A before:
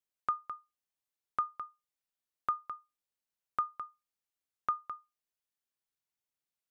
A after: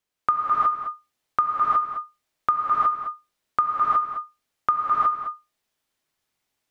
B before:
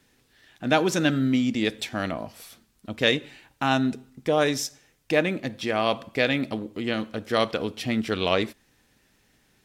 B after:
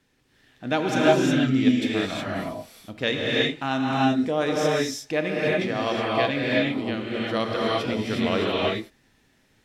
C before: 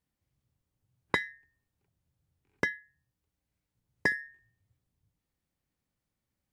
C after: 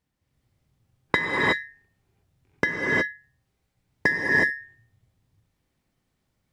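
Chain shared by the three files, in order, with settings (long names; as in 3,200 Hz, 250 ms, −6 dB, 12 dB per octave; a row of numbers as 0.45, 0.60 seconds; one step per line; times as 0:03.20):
high-shelf EQ 7,300 Hz −8.5 dB
reverb whose tail is shaped and stops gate 390 ms rising, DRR −4.5 dB
loudness normalisation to −24 LKFS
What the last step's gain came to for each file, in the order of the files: +10.5, −4.0, +6.0 decibels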